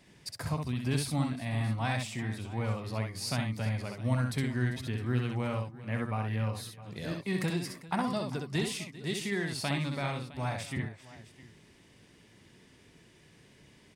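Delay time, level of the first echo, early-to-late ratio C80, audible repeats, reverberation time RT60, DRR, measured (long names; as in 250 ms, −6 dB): 64 ms, −4.5 dB, no reverb audible, 3, no reverb audible, no reverb audible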